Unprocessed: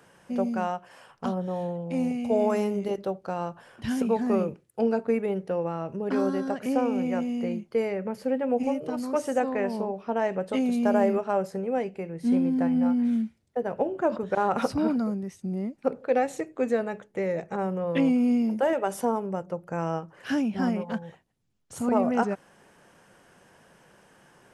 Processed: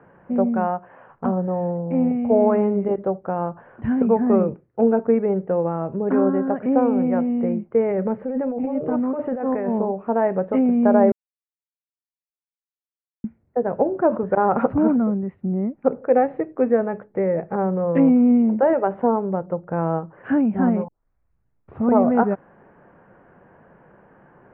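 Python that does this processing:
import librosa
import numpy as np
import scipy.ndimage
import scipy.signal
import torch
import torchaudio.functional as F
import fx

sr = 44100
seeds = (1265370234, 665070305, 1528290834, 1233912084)

y = fx.over_compress(x, sr, threshold_db=-30.0, ratio=-1.0, at=(7.86, 9.79))
y = fx.edit(y, sr, fx.silence(start_s=11.12, length_s=2.12),
    fx.tape_start(start_s=20.88, length_s=1.01), tone=tone)
y = scipy.signal.sosfilt(scipy.signal.bessel(8, 1200.0, 'lowpass', norm='mag', fs=sr, output='sos'), y)
y = y * 10.0 ** (7.5 / 20.0)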